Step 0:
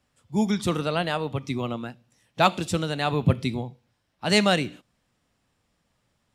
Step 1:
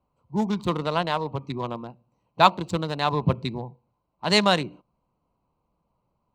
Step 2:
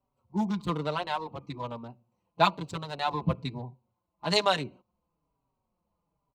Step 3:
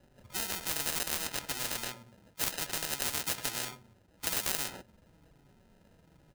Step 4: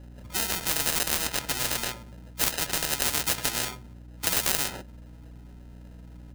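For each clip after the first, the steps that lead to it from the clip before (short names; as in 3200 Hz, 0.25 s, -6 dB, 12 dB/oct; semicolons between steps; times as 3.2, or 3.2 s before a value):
Wiener smoothing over 25 samples; thirty-one-band EQ 100 Hz -9 dB, 250 Hz -5 dB, 1000 Hz +12 dB, 4000 Hz +5 dB, 10000 Hz -8 dB
endless flanger 4.7 ms -1.1 Hz; gain -2.5 dB
sample-and-hold 39×; spectral compressor 10:1
hum 60 Hz, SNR 15 dB; gain +7 dB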